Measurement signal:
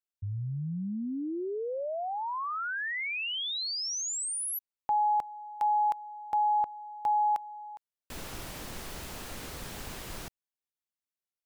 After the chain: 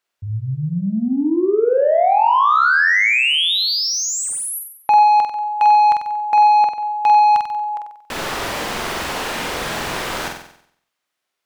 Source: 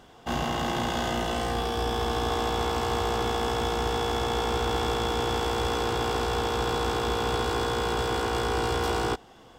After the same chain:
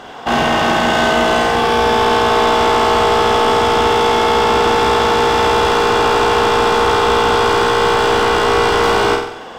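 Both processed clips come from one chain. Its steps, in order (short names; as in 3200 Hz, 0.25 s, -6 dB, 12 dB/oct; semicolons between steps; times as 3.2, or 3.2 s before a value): overdrive pedal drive 20 dB, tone 2100 Hz, clips at -14 dBFS; flutter echo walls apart 8 m, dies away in 0.65 s; gain +8 dB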